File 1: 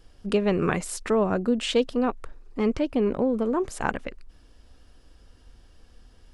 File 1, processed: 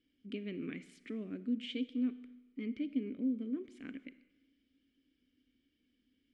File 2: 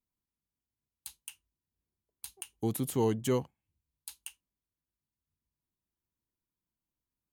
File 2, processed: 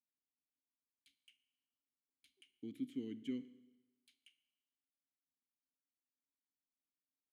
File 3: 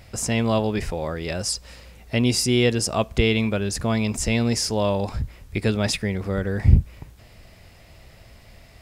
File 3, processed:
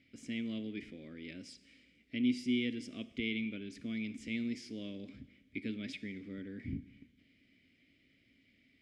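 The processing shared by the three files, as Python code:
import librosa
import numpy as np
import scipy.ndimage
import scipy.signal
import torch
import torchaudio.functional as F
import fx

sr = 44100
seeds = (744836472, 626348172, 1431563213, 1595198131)

y = fx.vowel_filter(x, sr, vowel='i')
y = fx.rev_schroeder(y, sr, rt60_s=1.1, comb_ms=25, drr_db=14.5)
y = F.gain(torch.from_numpy(y), -4.0).numpy()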